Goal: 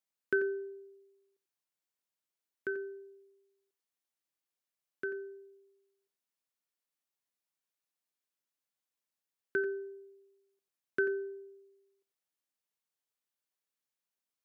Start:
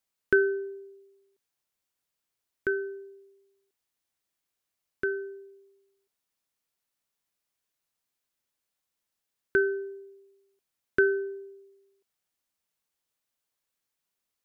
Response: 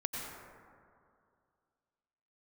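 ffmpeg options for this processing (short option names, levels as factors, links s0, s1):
-filter_complex "[0:a]highpass=150[s0];[1:a]atrim=start_sample=2205,afade=t=out:st=0.14:d=0.01,atrim=end_sample=6615[s1];[s0][s1]afir=irnorm=-1:irlink=0,volume=0.447"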